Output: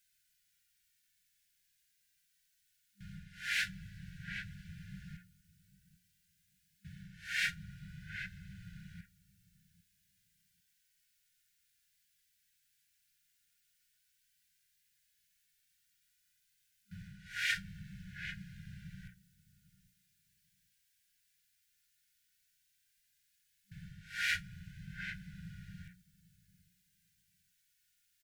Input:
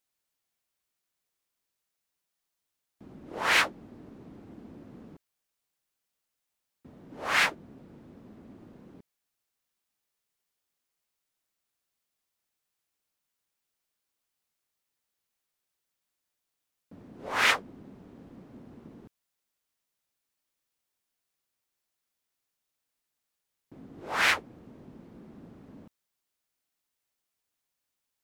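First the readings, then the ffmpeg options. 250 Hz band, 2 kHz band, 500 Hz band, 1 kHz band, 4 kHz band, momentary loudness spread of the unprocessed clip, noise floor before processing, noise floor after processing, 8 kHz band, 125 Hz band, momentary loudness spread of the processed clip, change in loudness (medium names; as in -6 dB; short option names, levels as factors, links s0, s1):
-6.0 dB, -8.5 dB, under -40 dB, -20.0 dB, -9.0 dB, 13 LU, -84 dBFS, -77 dBFS, -9.0 dB, +3.5 dB, 20 LU, -14.5 dB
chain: -filter_complex "[0:a]bandreject=f=60:t=h:w=6,bandreject=f=120:t=h:w=6,bandreject=f=180:t=h:w=6,asplit=2[s0][s1];[s1]adelay=798,lowpass=f=810:p=1,volume=0.112,asplit=2[s2][s3];[s3]adelay=798,lowpass=f=810:p=1,volume=0.2[s4];[s0][s2][s4]amix=inputs=3:normalize=0,areverse,acompressor=threshold=0.01:ratio=6,areverse,flanger=delay=1.9:depth=1.2:regen=56:speed=0.12:shape=triangular,afftfilt=real='re*(1-between(b*sr/4096,200,1400))':imag='im*(1-between(b*sr/4096,200,1400))':win_size=4096:overlap=0.75,volume=4.22"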